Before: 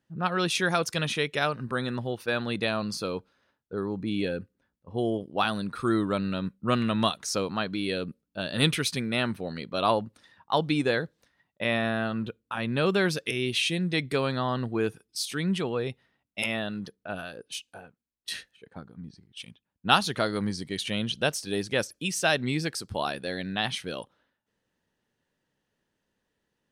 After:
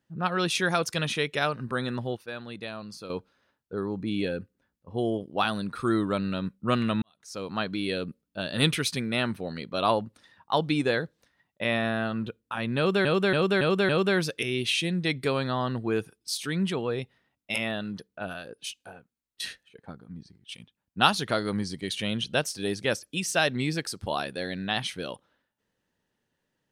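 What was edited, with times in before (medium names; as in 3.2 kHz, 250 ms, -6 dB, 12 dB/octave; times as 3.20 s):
2.17–3.10 s: gain -9.5 dB
7.02–7.59 s: fade in quadratic
12.77–13.05 s: loop, 5 plays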